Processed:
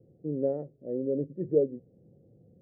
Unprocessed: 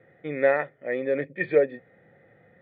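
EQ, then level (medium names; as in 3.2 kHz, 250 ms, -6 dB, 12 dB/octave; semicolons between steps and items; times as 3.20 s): four-pole ladder low-pass 510 Hz, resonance 25%; tilt EQ -3 dB/octave; 0.0 dB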